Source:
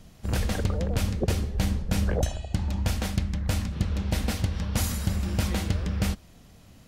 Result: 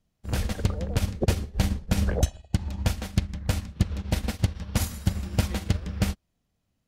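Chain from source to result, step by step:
expander for the loud parts 2.5 to 1, over −40 dBFS
level +4.5 dB

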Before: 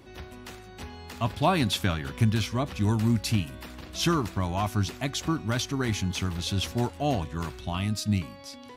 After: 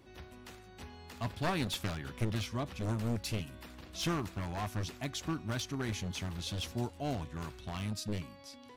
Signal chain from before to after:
wavefolder on the positive side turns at −22.5 dBFS
0:06.64–0:07.20: dynamic equaliser 1,500 Hz, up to −5 dB, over −43 dBFS, Q 0.92
level −8 dB

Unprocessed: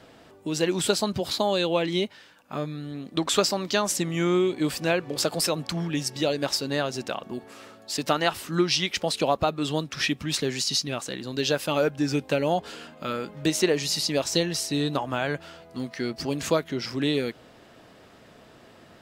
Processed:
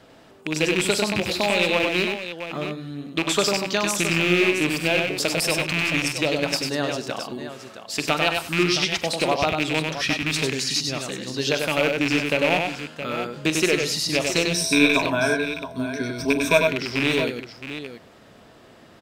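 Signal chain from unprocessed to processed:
loose part that buzzes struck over −31 dBFS, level −12 dBFS
0:14.50–0:16.67: EQ curve with evenly spaced ripples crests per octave 1.6, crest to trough 16 dB
multi-tap delay 45/97/122/194/669 ms −14.5/−4/−18/−19/−10.5 dB

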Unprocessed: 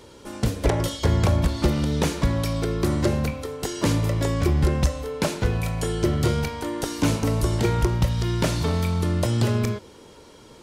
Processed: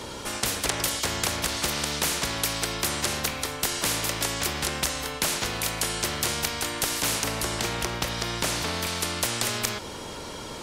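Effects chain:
0:07.24–0:08.87: tilt shelving filter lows +7 dB, about 1,400 Hz
every bin compressed towards the loudest bin 4 to 1

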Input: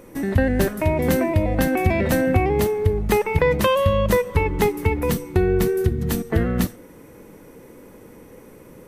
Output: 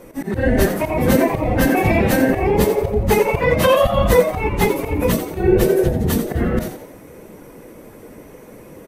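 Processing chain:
random phases in long frames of 50 ms
volume swells 112 ms
echo with shifted repeats 87 ms, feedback 39%, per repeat +130 Hz, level −10 dB
level +4 dB

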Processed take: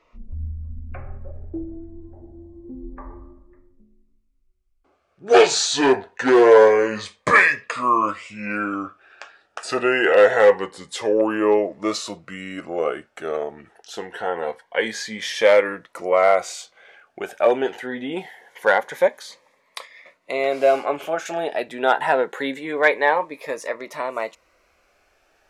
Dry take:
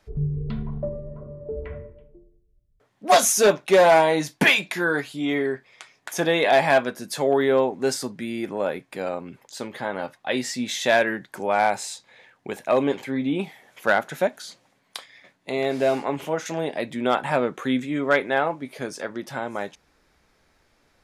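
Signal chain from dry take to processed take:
gliding playback speed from 52% → 113%
graphic EQ with 10 bands 125 Hz −11 dB, 250 Hz −5 dB, 500 Hz +8 dB, 1,000 Hz +7 dB, 2,000 Hz +7 dB
phaser whose notches keep moving one way rising 0.25 Hz
level −1 dB

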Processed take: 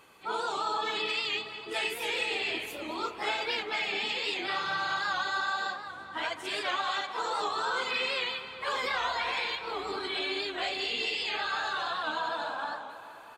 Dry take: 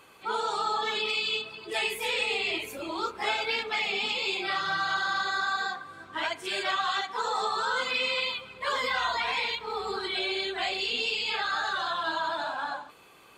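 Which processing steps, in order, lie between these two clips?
pitch-shifted copies added −5 semitones −11 dB
tape delay 213 ms, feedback 73%, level −11.5 dB, low-pass 4,500 Hz
wow of a warped record 78 rpm, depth 100 cents
level −3 dB

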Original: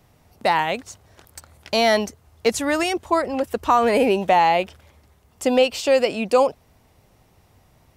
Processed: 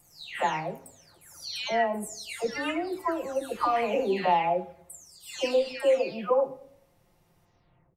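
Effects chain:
every frequency bin delayed by itself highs early, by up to 514 ms
on a send: comb filter 7.3 ms + convolution reverb RT60 0.65 s, pre-delay 6 ms, DRR 5.5 dB
on the sum: level −8.5 dB

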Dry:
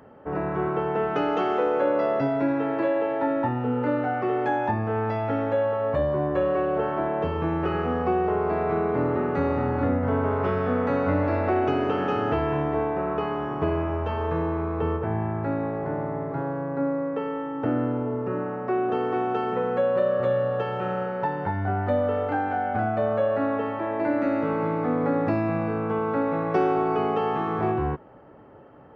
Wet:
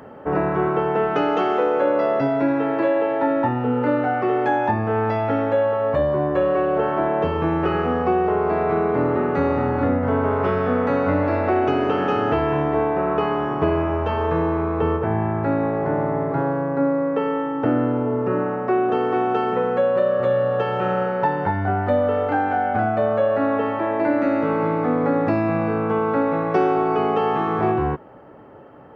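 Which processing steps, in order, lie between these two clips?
in parallel at +3 dB: speech leveller
on the sum: low-shelf EQ 110 Hz −5 dB
level −2.5 dB

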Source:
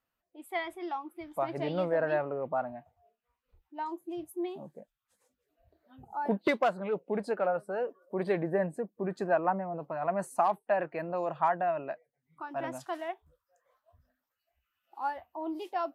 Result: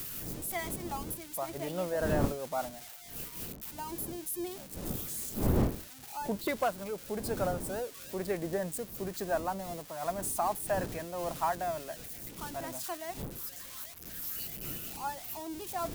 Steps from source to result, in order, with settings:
spike at every zero crossing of −28 dBFS
wind on the microphone 290 Hz −37 dBFS
amplitude modulation by smooth noise, depth 55%
level −1 dB

